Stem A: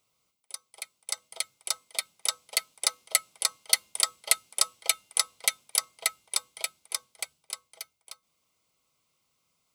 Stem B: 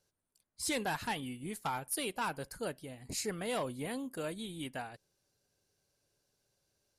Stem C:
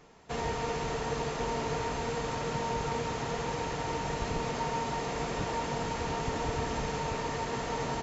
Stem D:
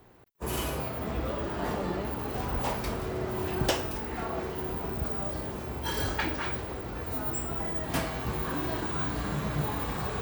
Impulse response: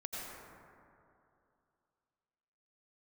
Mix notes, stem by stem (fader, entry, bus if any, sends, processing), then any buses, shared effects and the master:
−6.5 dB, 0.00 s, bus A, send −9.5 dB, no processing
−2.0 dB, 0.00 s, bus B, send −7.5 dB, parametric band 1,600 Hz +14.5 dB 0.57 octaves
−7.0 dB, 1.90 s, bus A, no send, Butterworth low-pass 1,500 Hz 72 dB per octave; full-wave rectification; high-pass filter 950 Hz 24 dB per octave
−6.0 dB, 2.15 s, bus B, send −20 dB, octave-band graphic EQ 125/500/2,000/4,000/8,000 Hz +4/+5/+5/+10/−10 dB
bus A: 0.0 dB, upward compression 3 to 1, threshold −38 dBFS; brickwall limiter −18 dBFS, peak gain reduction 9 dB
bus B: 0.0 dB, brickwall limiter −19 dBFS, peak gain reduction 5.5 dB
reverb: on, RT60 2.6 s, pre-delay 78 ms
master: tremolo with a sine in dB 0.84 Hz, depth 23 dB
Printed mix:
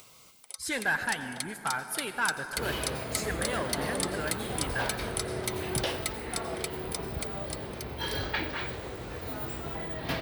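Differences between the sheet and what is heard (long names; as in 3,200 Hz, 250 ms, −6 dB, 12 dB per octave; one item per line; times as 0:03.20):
stem C: muted
master: missing tremolo with a sine in dB 0.84 Hz, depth 23 dB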